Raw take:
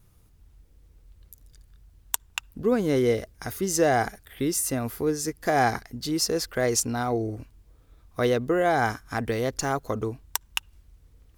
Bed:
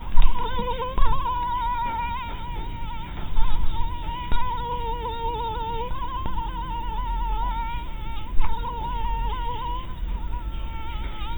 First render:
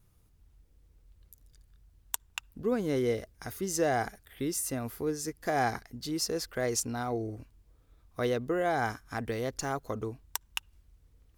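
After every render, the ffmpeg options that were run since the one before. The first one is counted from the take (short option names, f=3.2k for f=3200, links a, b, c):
-af "volume=-6.5dB"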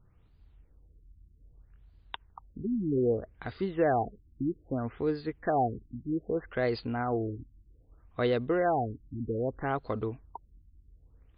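-filter_complex "[0:a]asplit=2[a][b];[b]asoftclip=type=tanh:threshold=-25dB,volume=-8dB[c];[a][c]amix=inputs=2:normalize=0,afftfilt=real='re*lt(b*sr/1024,340*pow(5000/340,0.5+0.5*sin(2*PI*0.63*pts/sr)))':imag='im*lt(b*sr/1024,340*pow(5000/340,0.5+0.5*sin(2*PI*0.63*pts/sr)))':win_size=1024:overlap=0.75"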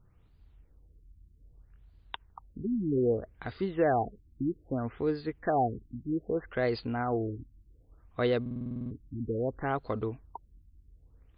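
-filter_complex "[0:a]asplit=11[a][b][c][d][e][f][g][h][i][j][k];[a]atrim=end=8.462[l];[b]atrim=start=8.408:end=8.462[m];[c]atrim=start=8.408:end=8.462[n];[d]atrim=start=8.408:end=8.462[o];[e]atrim=start=8.408:end=8.462[p];[f]atrim=start=8.408:end=8.462[q];[g]atrim=start=8.408:end=8.462[r];[h]atrim=start=8.408:end=8.462[s];[i]atrim=start=8.408:end=8.462[t];[j]atrim=start=8.408:end=8.462[u];[k]atrim=start=8.908[v];[l][m]acrossfade=d=0.004:c1=hsin:c2=hsin[w];[w][n]acrossfade=d=0.004:c1=hsin:c2=hsin[x];[x][o]acrossfade=d=0.004:c1=hsin:c2=hsin[y];[y][p]acrossfade=d=0.004:c1=hsin:c2=hsin[z];[z][q]acrossfade=d=0.004:c1=hsin:c2=hsin[aa];[aa][r]acrossfade=d=0.004:c1=hsin:c2=hsin[ab];[ab][s]acrossfade=d=0.004:c1=hsin:c2=hsin[ac];[ac][t]acrossfade=d=0.004:c1=hsin:c2=hsin[ad];[ad][u]acrossfade=d=0.004:c1=hsin:c2=hsin[ae];[ae][v]acrossfade=d=0.004:c1=hsin:c2=hsin"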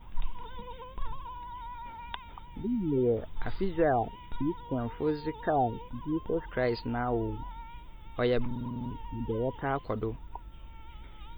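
-filter_complex "[1:a]volume=-16.5dB[a];[0:a][a]amix=inputs=2:normalize=0"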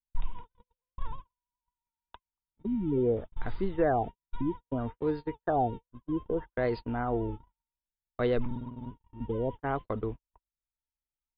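-af "agate=range=-54dB:threshold=-34dB:ratio=16:detection=peak,lowpass=f=2.3k:p=1"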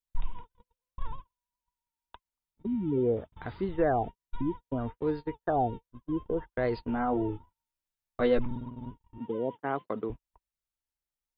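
-filter_complex "[0:a]asettb=1/sr,asplit=3[a][b][c];[a]atrim=end=2.674[d];[b]atrim=start=2.67:end=3.69,asetpts=PTS-STARTPTS,afade=t=in:d=0.004:c=qsin,afade=t=out:st=1.016:d=0.004:c=qsin,highpass=72[e];[c]atrim=start=3.686[f];[d][e]acrossfade=d=0.004:c1=hsin:c2=qsin[g];[g][f]acrossfade=d=0.004:c1=qsin:c2=hsin,asettb=1/sr,asplit=3[h][i][j];[h]atrim=end=6.824[k];[i]atrim=start=6.82:end=8.39,asetpts=PTS-STARTPTS,afade=t=in:d=0.004:c=qsin,afade=t=out:st=1.566:d=0.004:c=qsin,asplit=2[l][m];[m]adelay=12,volume=-2.5dB[n];[l][n]amix=inputs=2:normalize=0,atrim=end_sample=69237[o];[j]atrim=start=8.386[p];[k][o]acrossfade=d=0.004:c1=hsin:c2=qsin[q];[q][p]acrossfade=d=0.004:c1=qsin:c2=hsin,asettb=1/sr,asplit=3[r][s][t];[r]atrim=end=9.184[u];[s]atrim=start=9.18:end=10.1,asetpts=PTS-STARTPTS,afade=t=in:d=0.004:c=qsin,afade=t=out:st=0.916:d=0.004:c=qsin,highpass=f=160:w=0.5412,highpass=f=160:w=1.3066[v];[t]atrim=start=10.096[w];[u][v]acrossfade=d=0.004:c1=hsin:c2=qsin[x];[x][w]acrossfade=d=0.004:c1=qsin:c2=hsin"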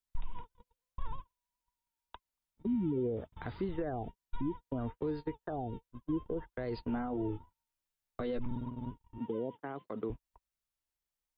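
-filter_complex "[0:a]alimiter=level_in=2dB:limit=-24dB:level=0:latency=1:release=134,volume=-2dB,acrossover=split=440|3000[a][b][c];[b]acompressor=threshold=-41dB:ratio=6[d];[a][d][c]amix=inputs=3:normalize=0"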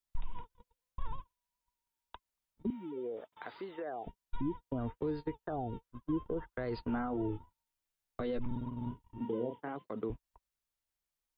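-filter_complex "[0:a]asettb=1/sr,asplit=3[a][b][c];[a]atrim=end=2.704[d];[b]atrim=start=2.7:end=4.07,asetpts=PTS-STARTPTS,afade=t=in:d=0.004:c=qsin,afade=t=out:st=1.366:d=0.004:c=qsin,highpass=500[e];[c]atrim=start=4.066[f];[d][e]acrossfade=d=0.004:c1=hsin:c2=qsin[g];[g][f]acrossfade=d=0.004:c1=qsin:c2=hsin,asettb=1/sr,asplit=3[h][i][j];[h]atrim=end=5.504[k];[i]atrim=start=5.5:end=7.26,asetpts=PTS-STARTPTS,afade=t=in:d=0.004:c=qsin,afade=t=out:st=1.756:d=0.004:c=qsin,equalizer=f=1.3k:t=o:w=0.72:g=5.5[l];[j]atrim=start=7.256[m];[k][l]acrossfade=d=0.004:c1=hsin:c2=qsin[n];[n][m]acrossfade=d=0.004:c1=qsin:c2=hsin,asettb=1/sr,asplit=3[o][p][q];[o]atrim=end=8.694[r];[p]atrim=start=8.69:end=9.76,asetpts=PTS-STARTPTS,afade=t=in:d=0.004:c=qsin,afade=t=out:st=1.066:d=0.004:c=qsin,asplit=2[s][t];[t]adelay=33,volume=-6dB[u];[s][u]amix=inputs=2:normalize=0,atrim=end_sample=47187[v];[q]atrim=start=9.756[w];[r][v]acrossfade=d=0.004:c1=hsin:c2=qsin[x];[x][w]acrossfade=d=0.004:c1=qsin:c2=hsin"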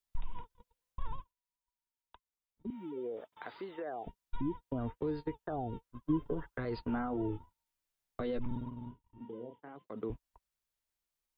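-filter_complex "[0:a]asettb=1/sr,asplit=3[a][b][c];[a]atrim=end=6.044[d];[b]atrim=start=6.04:end=6.65,asetpts=PTS-STARTPTS,afade=t=in:d=0.004:c=qsin,afade=t=out:st=0.606:d=0.004:c=qsin,aecho=1:1:7.1:0.78,atrim=end_sample=26901[e];[c]atrim=start=6.646[f];[d][e]acrossfade=d=0.004:c1=hsin:c2=qsin[g];[g][f]acrossfade=d=0.004:c1=qsin:c2=hsin,asplit=5[h][i][j][k][l];[h]atrim=end=1.34,asetpts=PTS-STARTPTS,afade=t=out:st=1.19:d=0.15:silence=0.354813[m];[i]atrim=start=1.34:end=2.64,asetpts=PTS-STARTPTS,volume=-9dB[n];[j]atrim=start=2.64:end=8.94,asetpts=PTS-STARTPTS,afade=t=in:d=0.15:silence=0.354813,afade=t=out:st=5.91:d=0.39:silence=0.334965[o];[k]atrim=start=8.94:end=9.74,asetpts=PTS-STARTPTS,volume=-9.5dB[p];[l]atrim=start=9.74,asetpts=PTS-STARTPTS,afade=t=in:d=0.39:silence=0.334965[q];[m][n][o][p][q]concat=n=5:v=0:a=1"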